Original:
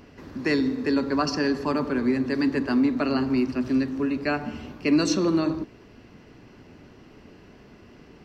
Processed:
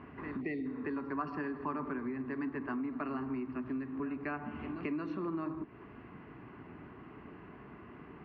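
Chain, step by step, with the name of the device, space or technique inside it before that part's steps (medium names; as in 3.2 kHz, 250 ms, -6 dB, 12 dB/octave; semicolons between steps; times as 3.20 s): reverse echo 227 ms -19 dB; time-frequency box 0.41–0.66 s, 790–1800 Hz -27 dB; bass amplifier (compression 5:1, threshold -35 dBFS, peak gain reduction 16.5 dB; cabinet simulation 69–2300 Hz, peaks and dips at 94 Hz -5 dB, 220 Hz -3 dB, 530 Hz -9 dB, 1.1 kHz +7 dB)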